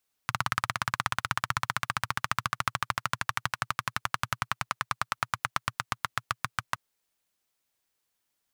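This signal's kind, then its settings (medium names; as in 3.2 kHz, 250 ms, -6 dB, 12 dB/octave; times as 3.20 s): single-cylinder engine model, changing speed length 6.47 s, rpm 2100, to 800, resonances 120/1200 Hz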